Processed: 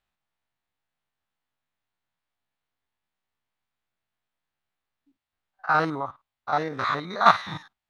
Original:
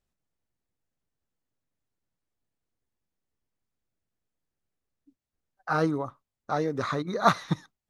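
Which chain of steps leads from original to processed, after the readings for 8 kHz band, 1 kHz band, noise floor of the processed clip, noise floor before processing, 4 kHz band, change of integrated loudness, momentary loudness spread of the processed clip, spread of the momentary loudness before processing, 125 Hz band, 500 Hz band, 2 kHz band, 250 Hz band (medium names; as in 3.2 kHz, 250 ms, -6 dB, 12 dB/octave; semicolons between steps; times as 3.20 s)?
no reading, +6.0 dB, under -85 dBFS, under -85 dBFS, +5.0 dB, +4.0 dB, 17 LU, 9 LU, -4.5 dB, -1.0 dB, +6.5 dB, -4.0 dB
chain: spectrogram pixelated in time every 50 ms; high-order bell 1.7 kHz +11.5 dB 2.9 oct; trim -3 dB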